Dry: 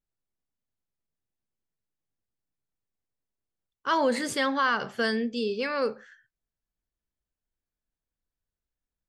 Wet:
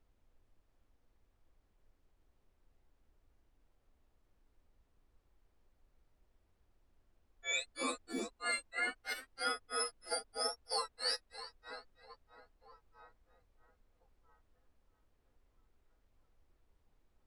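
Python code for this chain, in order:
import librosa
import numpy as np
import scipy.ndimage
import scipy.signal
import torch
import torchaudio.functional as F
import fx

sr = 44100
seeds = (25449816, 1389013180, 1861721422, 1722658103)

y = fx.octave_mirror(x, sr, pivot_hz=1500.0)
y = fx.hum_notches(y, sr, base_hz=60, count=9)
y = fx.echo_split(y, sr, split_hz=1400.0, low_ms=366, high_ms=179, feedback_pct=52, wet_db=-10)
y = fx.level_steps(y, sr, step_db=12)
y = fx.env_lowpass(y, sr, base_hz=2800.0, full_db=-33.5)
y = fx.stretch_vocoder(y, sr, factor=1.9)
y = fx.granulator(y, sr, seeds[0], grain_ms=245.0, per_s=3.1, spray_ms=100.0, spread_st=0)
y = fx.dmg_noise_colour(y, sr, seeds[1], colour='brown', level_db=-72.0)
y = fx.peak_eq(y, sr, hz=150.0, db=-10.5, octaves=1.1)
y = y * librosa.db_to_amplitude(3.5)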